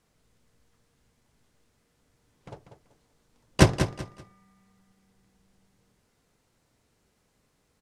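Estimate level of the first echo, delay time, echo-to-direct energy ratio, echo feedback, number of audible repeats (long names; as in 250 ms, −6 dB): −9.0 dB, 192 ms, −8.5 dB, 26%, 3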